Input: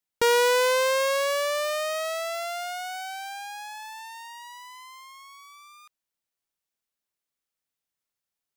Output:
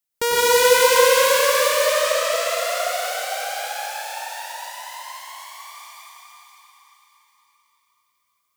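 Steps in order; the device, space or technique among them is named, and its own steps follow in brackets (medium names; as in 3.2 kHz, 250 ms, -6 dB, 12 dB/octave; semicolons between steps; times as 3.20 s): treble shelf 6.1 kHz +9 dB; 1.72–2.32 s: Chebyshev band-pass 430–8300 Hz, order 3; cathedral (reverberation RT60 4.9 s, pre-delay 93 ms, DRR -7.5 dB); trim -1.5 dB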